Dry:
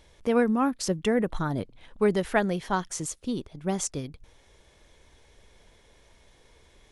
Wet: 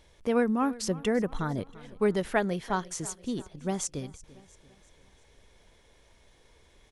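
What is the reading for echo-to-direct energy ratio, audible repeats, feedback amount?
-18.5 dB, 3, 47%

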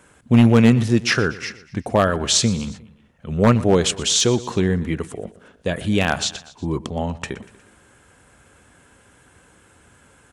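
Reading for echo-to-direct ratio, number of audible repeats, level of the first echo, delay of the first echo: -17.0 dB, 3, -18.5 dB, 120 ms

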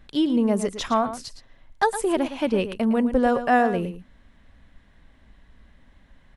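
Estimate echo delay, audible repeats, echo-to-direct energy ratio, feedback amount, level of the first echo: 113 ms, 1, -11.5 dB, no regular repeats, -11.5 dB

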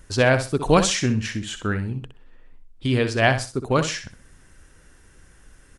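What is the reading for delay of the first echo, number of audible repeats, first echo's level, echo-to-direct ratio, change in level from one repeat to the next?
63 ms, 3, -10.0 dB, -9.5 dB, -12.0 dB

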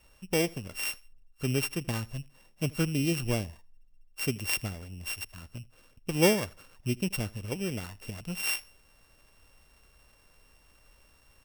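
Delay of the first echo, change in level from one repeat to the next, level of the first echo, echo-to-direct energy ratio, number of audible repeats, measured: 80 ms, -10.5 dB, -23.5 dB, -23.0 dB, 2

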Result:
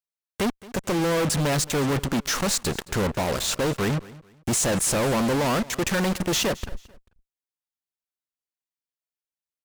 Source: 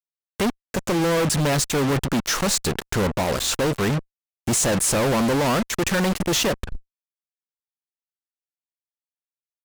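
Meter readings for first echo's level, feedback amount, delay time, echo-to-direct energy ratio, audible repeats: -20.0 dB, 28%, 220 ms, -19.5 dB, 2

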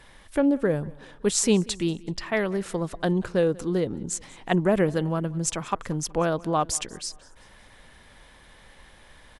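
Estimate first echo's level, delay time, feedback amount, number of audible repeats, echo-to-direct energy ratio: -23.0 dB, 188 ms, 46%, 2, -22.0 dB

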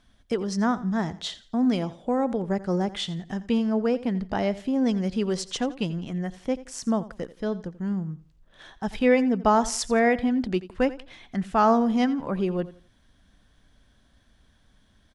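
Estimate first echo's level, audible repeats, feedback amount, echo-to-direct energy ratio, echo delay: -17.0 dB, 2, 28%, -16.5 dB, 86 ms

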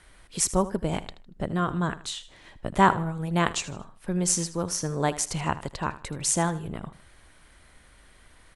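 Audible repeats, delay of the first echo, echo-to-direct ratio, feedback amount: 2, 78 ms, -15.0 dB, 32%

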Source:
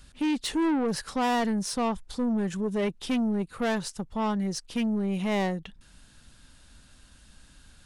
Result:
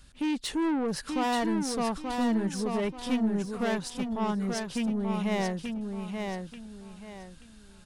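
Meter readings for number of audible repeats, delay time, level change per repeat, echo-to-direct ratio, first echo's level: 3, 882 ms, -10.5 dB, -4.5 dB, -5.0 dB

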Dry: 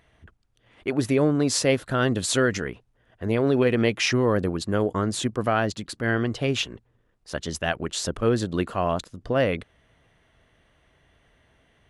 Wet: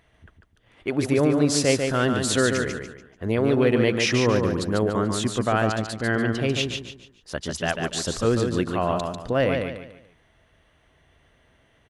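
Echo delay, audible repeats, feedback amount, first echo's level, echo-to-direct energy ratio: 145 ms, 4, 34%, -5.0 dB, -4.5 dB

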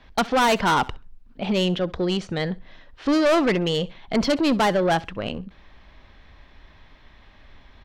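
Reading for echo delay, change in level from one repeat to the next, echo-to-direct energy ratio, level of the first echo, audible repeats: 66 ms, -13.0 dB, -21.5 dB, -21.5 dB, 2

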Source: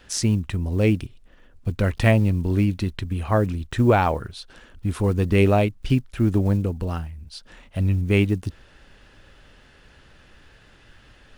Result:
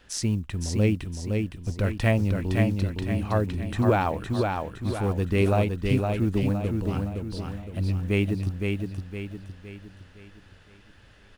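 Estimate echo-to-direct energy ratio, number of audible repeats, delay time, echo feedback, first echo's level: -3.0 dB, 5, 513 ms, 44%, -4.0 dB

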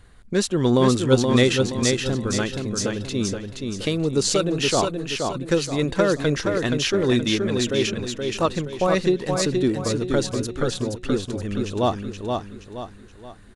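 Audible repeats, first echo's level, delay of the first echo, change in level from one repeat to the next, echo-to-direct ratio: 4, -4.5 dB, 474 ms, -8.0 dB, -3.5 dB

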